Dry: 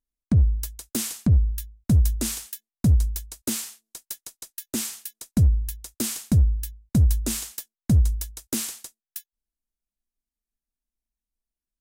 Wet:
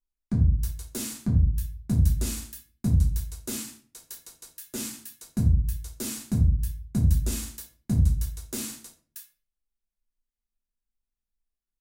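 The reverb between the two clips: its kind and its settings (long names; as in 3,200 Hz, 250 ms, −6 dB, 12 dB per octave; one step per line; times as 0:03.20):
rectangular room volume 31 cubic metres, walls mixed, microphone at 0.75 metres
level −9 dB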